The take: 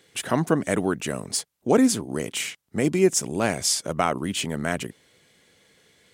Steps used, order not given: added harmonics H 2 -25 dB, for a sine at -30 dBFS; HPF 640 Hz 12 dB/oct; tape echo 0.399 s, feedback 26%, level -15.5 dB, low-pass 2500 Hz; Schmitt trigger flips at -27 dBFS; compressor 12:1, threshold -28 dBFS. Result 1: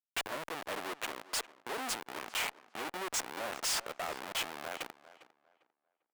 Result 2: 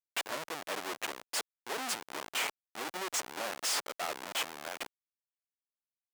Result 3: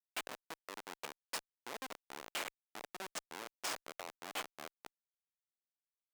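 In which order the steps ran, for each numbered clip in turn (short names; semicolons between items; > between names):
Schmitt trigger > compressor > tape echo > HPF > added harmonics; tape echo > Schmitt trigger > compressor > added harmonics > HPF; compressor > tape echo > Schmitt trigger > HPF > added harmonics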